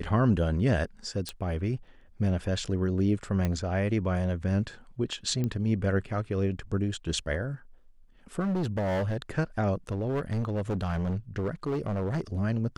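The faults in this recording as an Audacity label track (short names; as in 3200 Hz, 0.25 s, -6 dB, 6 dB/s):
1.290000	1.290000	pop -18 dBFS
3.450000	3.450000	pop -16 dBFS
5.440000	5.440000	pop -19 dBFS
8.390000	9.380000	clipped -25.5 dBFS
9.890000	12.210000	clipped -25.5 dBFS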